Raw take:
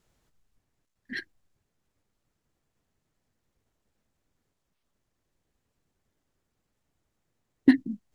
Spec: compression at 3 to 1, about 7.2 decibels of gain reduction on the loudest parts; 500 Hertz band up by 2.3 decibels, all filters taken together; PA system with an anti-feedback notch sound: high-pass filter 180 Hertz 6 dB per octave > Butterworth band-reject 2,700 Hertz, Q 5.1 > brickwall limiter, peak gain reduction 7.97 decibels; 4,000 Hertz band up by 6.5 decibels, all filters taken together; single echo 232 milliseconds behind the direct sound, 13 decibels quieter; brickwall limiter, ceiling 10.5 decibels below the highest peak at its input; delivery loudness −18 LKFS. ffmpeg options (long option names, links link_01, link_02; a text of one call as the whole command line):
ffmpeg -i in.wav -af "equalizer=frequency=500:width_type=o:gain=5.5,equalizer=frequency=4000:width_type=o:gain=7.5,acompressor=threshold=-20dB:ratio=3,alimiter=limit=-19dB:level=0:latency=1,highpass=frequency=180:poles=1,asuperstop=centerf=2700:order=8:qfactor=5.1,aecho=1:1:232:0.224,volume=23.5dB,alimiter=limit=-4.5dB:level=0:latency=1" out.wav